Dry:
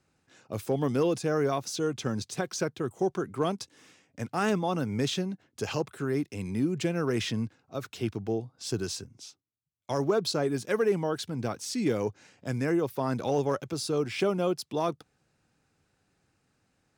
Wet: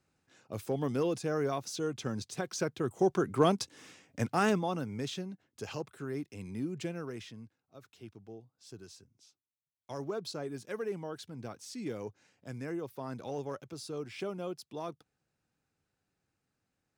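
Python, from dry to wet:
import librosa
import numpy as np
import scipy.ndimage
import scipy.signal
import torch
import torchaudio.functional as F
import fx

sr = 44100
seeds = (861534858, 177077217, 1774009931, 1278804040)

y = fx.gain(x, sr, db=fx.line((2.38, -5.0), (3.35, 3.0), (4.23, 3.0), (4.95, -8.5), (6.89, -8.5), (7.34, -18.0), (8.96, -18.0), (9.94, -11.0)))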